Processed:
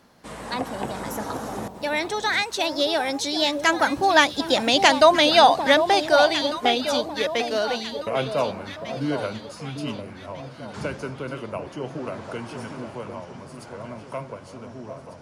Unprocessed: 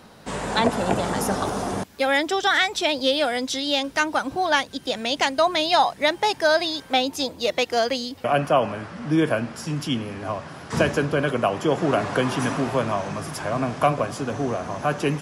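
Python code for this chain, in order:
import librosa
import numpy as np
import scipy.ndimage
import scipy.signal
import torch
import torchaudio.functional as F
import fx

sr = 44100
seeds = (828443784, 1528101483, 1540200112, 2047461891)

y = fx.doppler_pass(x, sr, speed_mps=30, closest_m=30.0, pass_at_s=4.78)
y = fx.echo_alternate(y, sr, ms=749, hz=1000.0, feedback_pct=59, wet_db=-7.5)
y = F.gain(torch.from_numpy(y), 5.5).numpy()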